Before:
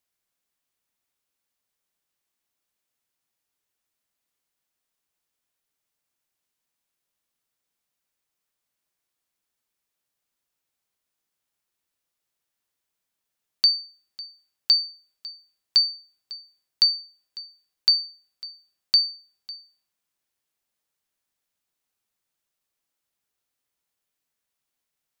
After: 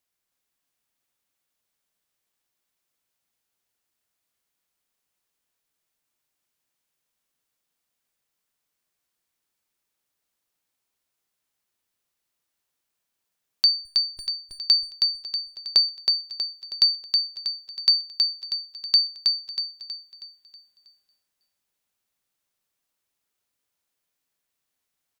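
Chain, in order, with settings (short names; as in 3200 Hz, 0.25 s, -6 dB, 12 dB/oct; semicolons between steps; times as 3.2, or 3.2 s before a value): 13.85–14.27 minimum comb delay 2.8 ms; 14.91–15.89 bell 530 Hz +10.5 dB 1.7 oct; 17.99–18.46 HPF 160 Hz; on a send: feedback echo 0.32 s, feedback 45%, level -3.5 dB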